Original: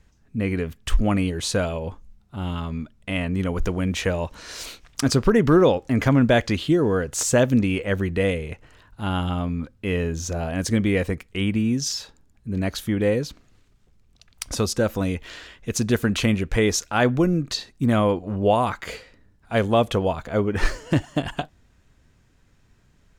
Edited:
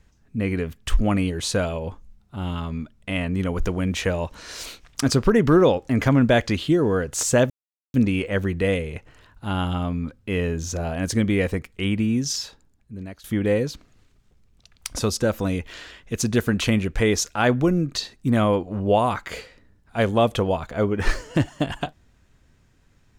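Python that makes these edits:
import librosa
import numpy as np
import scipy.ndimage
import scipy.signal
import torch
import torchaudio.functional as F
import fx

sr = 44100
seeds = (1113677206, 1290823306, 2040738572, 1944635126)

y = fx.edit(x, sr, fx.insert_silence(at_s=7.5, length_s=0.44),
    fx.fade_out_to(start_s=11.98, length_s=0.82, floor_db=-22.0), tone=tone)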